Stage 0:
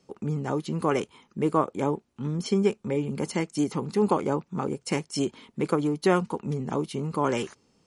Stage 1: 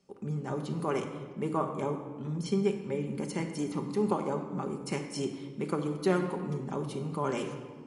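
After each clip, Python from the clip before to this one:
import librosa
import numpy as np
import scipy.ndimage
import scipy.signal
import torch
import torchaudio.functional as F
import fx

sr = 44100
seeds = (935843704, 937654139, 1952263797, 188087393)

y = fx.peak_eq(x, sr, hz=9800.0, db=2.5, octaves=0.24)
y = fx.room_shoebox(y, sr, seeds[0], volume_m3=1800.0, walls='mixed', distance_m=1.2)
y = y * 10.0 ** (-7.5 / 20.0)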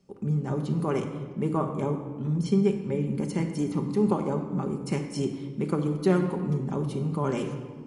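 y = fx.low_shelf(x, sr, hz=280.0, db=10.5)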